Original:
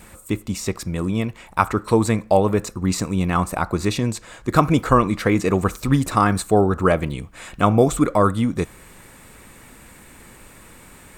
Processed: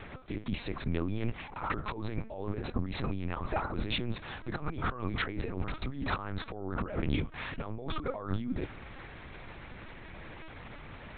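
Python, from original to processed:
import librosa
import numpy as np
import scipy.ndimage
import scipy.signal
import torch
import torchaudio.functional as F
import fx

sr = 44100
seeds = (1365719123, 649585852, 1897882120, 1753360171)

y = fx.over_compress(x, sr, threshold_db=-27.0, ratio=-1.0)
y = fx.lpc_vocoder(y, sr, seeds[0], excitation='pitch_kept', order=8)
y = y * librosa.db_to_amplitude(-7.0)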